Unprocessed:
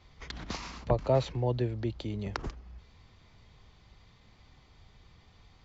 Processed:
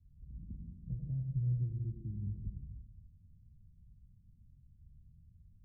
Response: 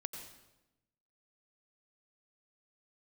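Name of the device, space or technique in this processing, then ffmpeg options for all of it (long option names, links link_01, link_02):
club heard from the street: -filter_complex "[0:a]asettb=1/sr,asplit=3[link_01][link_02][link_03];[link_01]atrim=end=0.694[link_04];[link_02]atrim=start=0.69:end=2.11,asetpts=PTS-STARTPTS,afade=type=in:duration=0.004:curve=qsin,afade=type=out:start_time=1.416:duration=0.004:curve=qsin,aecho=1:1:6.3:0.74,atrim=end_sample=62622[link_05];[link_03]atrim=start=2.106[link_06];[link_04][link_05]acrossfade=duration=0.004:curve1=hsin:curve2=qsin[link_07];[link_07][link_06]acrossfade=duration=0.004:curve1=qsin:curve2=hsin,alimiter=limit=-19.5dB:level=0:latency=1:release=312,lowpass=frequency=180:width=0.5412,lowpass=frequency=180:width=1.3066[link_08];[1:a]atrim=start_sample=2205[link_09];[link_08][link_09]afir=irnorm=-1:irlink=0"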